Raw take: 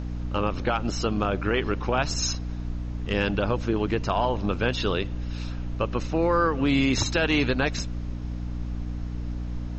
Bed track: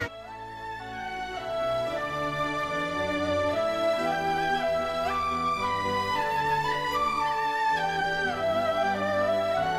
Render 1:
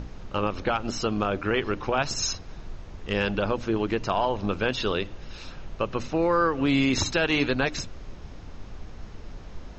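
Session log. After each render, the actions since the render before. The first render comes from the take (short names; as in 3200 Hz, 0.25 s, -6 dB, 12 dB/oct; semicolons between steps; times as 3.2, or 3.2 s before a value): notches 60/120/180/240/300 Hz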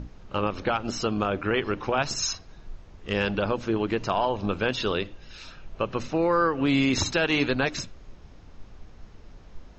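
noise print and reduce 7 dB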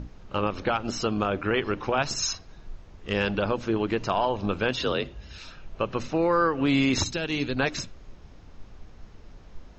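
4.79–5.38 frequency shift +44 Hz; 7.04–7.57 bell 1100 Hz -10 dB 2.9 oct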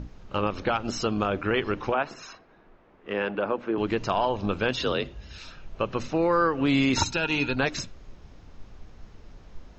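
1.94–3.78 three-band isolator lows -20 dB, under 210 Hz, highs -23 dB, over 2600 Hz; 6.96–7.56 small resonant body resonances 920/1400/2500 Hz, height 16 dB, ringing for 40 ms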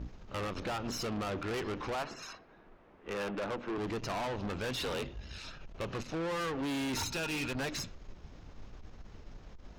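tube stage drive 33 dB, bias 0.5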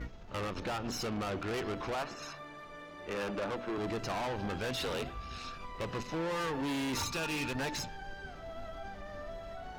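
add bed track -19.5 dB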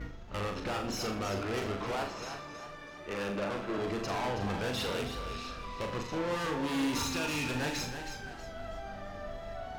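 on a send: flutter echo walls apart 6.9 m, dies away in 0.43 s; on the sum: warbling echo 0.32 s, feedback 35%, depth 81 cents, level -9 dB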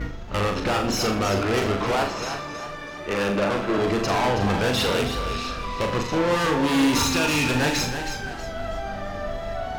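gain +11.5 dB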